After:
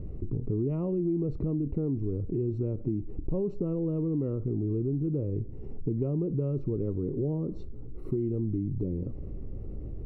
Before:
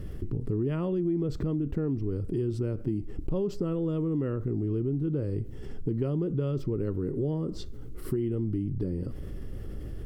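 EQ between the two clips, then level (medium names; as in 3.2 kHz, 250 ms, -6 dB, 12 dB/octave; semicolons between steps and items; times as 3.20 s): boxcar filter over 27 samples; 0.0 dB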